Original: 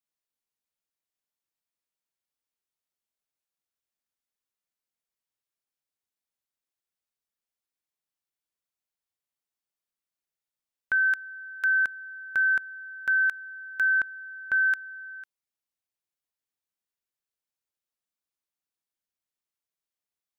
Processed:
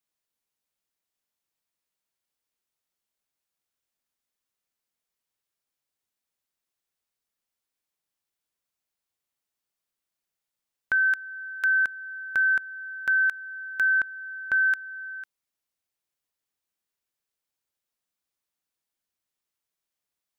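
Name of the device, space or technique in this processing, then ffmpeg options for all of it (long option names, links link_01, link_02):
parallel compression: -filter_complex "[0:a]asplit=2[link_01][link_02];[link_02]acompressor=threshold=-38dB:ratio=6,volume=-4dB[link_03];[link_01][link_03]amix=inputs=2:normalize=0"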